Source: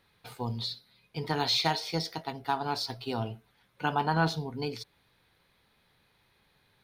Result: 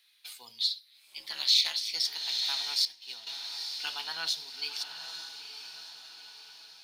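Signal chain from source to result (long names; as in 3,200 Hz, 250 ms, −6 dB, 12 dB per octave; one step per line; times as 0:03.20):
meter weighting curve D
feedback delay with all-pass diffusion 903 ms, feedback 50%, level −8 dB
0:02.85–0:03.27: downward expander −22 dBFS
first difference
0:00.67–0:01.95: ring modulation 110 Hz
level +1.5 dB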